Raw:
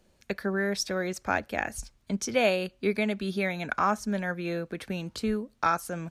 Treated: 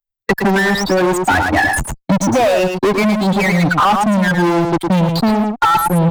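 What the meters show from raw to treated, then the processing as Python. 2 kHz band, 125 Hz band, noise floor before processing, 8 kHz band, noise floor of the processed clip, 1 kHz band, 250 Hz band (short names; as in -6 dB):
+15.0 dB, +19.5 dB, -66 dBFS, +12.0 dB, -80 dBFS, +16.5 dB, +17.0 dB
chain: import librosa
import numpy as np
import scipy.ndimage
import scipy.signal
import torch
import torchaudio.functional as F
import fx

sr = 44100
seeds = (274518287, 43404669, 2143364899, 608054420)

p1 = fx.bin_expand(x, sr, power=3.0)
p2 = fx.fuzz(p1, sr, gain_db=52.0, gate_db=-60.0)
p3 = p1 + (p2 * librosa.db_to_amplitude(-3.5))
p4 = fx.high_shelf(p3, sr, hz=2100.0, db=-9.5)
p5 = fx.rider(p4, sr, range_db=4, speed_s=0.5)
p6 = fx.peak_eq(p5, sr, hz=860.0, db=9.0, octaves=0.93)
p7 = p6 + fx.echo_single(p6, sr, ms=109, db=-6.5, dry=0)
p8 = 10.0 ** (-12.0 / 20.0) * np.tanh(p7 / 10.0 ** (-12.0 / 20.0))
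p9 = fx.band_squash(p8, sr, depth_pct=70)
y = p9 * librosa.db_to_amplitude(4.5)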